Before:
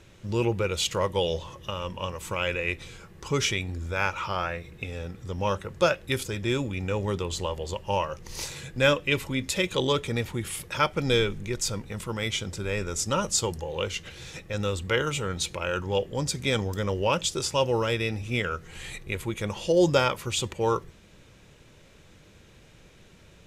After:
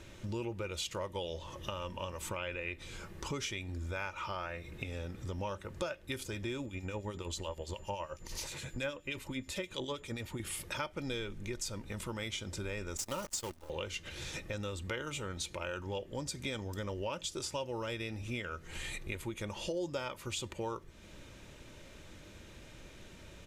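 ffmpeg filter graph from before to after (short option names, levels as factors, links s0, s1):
-filter_complex "[0:a]asettb=1/sr,asplit=3[s0][s1][s2];[s0]atrim=end=2.294[s3];[s1]atrim=start=2.29:end=2.78,asetpts=PTS-STARTPTS,afade=t=in:d=0.004:c=qsin,afade=t=out:st=0.486:d=0.004:c=qsin,acrossover=split=4700[s4][s5];[s5]acompressor=threshold=0.00141:ratio=4:attack=1:release=60[s6];[s4][s6]amix=inputs=2:normalize=0,equalizer=f=6000:t=o:w=0.22:g=-5[s7];[s2]atrim=start=2.776[s8];[s3][s7]acrossfade=d=0.004:c1=hsin:c2=qsin[s9];[s9][s8]acrossfade=d=0.004:c1=qsin:c2=hsin,asettb=1/sr,asplit=3[s10][s11][s12];[s10]atrim=end=6.664[s13];[s11]atrim=start=6.66:end=10.4,asetpts=PTS-STARTPTS,afade=t=in:d=0.004:c=qsin,afade=t=out:st=3.736:d=0.004:c=qsin,acrossover=split=2200[s14][s15];[s14]aeval=exprs='val(0)*(1-0.7/2+0.7/2*cos(2*PI*9.5*n/s))':c=same[s16];[s15]aeval=exprs='val(0)*(1-0.7/2-0.7/2*cos(2*PI*9.5*n/s))':c=same[s17];[s16][s17]amix=inputs=2:normalize=0,aeval=exprs='val(0)+0.001*sin(2*PI*7100*n/s)':c=same[s18];[s12]atrim=start=10.396[s19];[s13][s18]acrossfade=d=0.004:c1=hsin:c2=qsin[s20];[s20][s19]acrossfade=d=0.004:c1=qsin:c2=hsin,asettb=1/sr,asplit=3[s21][s22][s23];[s21]atrim=end=12.974[s24];[s22]atrim=start=12.97:end=13.7,asetpts=PTS-STARTPTS,afade=t=in:d=0.004:c=qsin,afade=t=out:st=0.726:d=0.004:c=qsin,agate=range=0.251:threshold=0.0282:ratio=16:release=100:detection=peak,highshelf=f=7800:g=3,acrusher=bits=6:dc=4:mix=0:aa=0.000001[s25];[s23]atrim=start=13.696[s26];[s24][s25]acrossfade=d=0.004:c1=hsin:c2=qsin[s27];[s27][s26]acrossfade=d=0.004:c1=qsin:c2=hsin,aecho=1:1:3.3:0.32,acompressor=threshold=0.0112:ratio=4,volume=1.12"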